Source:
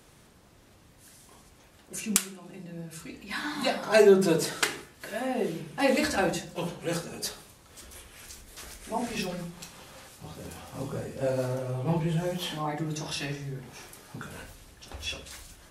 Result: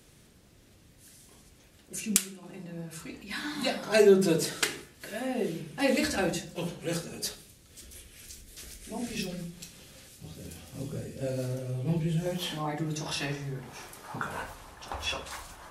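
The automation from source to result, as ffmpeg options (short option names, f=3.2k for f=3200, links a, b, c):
-af "asetnsamples=n=441:p=0,asendcmd='2.43 equalizer g 2;3.22 equalizer g -6.5;7.35 equalizer g -14.5;12.26 equalizer g -2.5;13.06 equalizer g 4.5;14.04 equalizer g 14',equalizer=f=970:t=o:w=1.4:g=-8.5"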